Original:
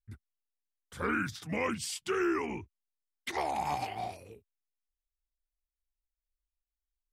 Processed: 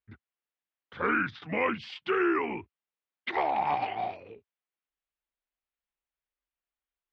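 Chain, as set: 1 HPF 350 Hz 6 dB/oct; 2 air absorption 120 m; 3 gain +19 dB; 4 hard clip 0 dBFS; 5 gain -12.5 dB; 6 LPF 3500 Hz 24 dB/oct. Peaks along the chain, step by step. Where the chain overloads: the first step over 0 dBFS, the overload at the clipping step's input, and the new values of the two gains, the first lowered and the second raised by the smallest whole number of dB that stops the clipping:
-21.0, -21.5, -2.5, -2.5, -15.0, -15.0 dBFS; no overload

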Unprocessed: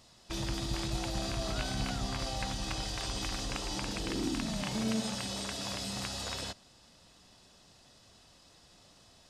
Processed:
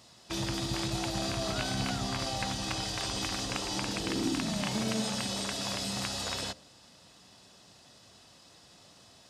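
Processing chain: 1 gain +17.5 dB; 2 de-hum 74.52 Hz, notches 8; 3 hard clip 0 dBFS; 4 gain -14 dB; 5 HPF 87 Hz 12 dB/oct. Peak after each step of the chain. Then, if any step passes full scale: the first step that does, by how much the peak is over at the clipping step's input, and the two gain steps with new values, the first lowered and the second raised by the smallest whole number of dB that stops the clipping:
-3.0, -3.0, -3.0, -17.0, -17.0 dBFS; no overload

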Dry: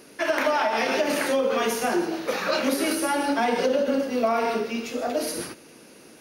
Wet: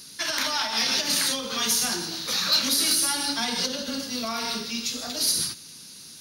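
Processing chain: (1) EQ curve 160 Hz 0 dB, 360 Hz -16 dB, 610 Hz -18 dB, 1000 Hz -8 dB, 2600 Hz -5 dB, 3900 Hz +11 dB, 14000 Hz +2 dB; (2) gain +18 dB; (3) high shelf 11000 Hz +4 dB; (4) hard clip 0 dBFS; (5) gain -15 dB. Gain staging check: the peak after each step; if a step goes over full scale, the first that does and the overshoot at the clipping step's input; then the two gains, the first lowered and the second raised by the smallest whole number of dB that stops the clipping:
-9.5, +8.5, +9.0, 0.0, -15.0 dBFS; step 2, 9.0 dB; step 2 +9 dB, step 5 -6 dB

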